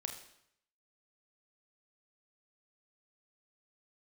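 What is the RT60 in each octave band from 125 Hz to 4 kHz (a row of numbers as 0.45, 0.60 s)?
0.80, 0.70, 0.70, 0.75, 0.70, 0.70 s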